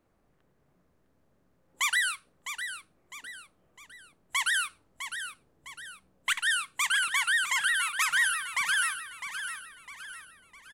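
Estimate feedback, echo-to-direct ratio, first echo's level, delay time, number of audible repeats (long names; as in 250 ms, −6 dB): 42%, −8.5 dB, −9.5 dB, 656 ms, 4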